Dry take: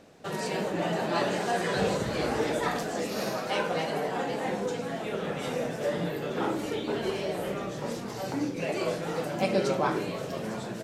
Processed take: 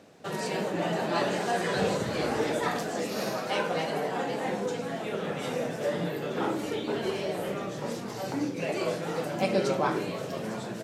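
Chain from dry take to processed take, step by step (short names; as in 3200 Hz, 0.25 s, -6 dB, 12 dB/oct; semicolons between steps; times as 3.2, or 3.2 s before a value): HPF 82 Hz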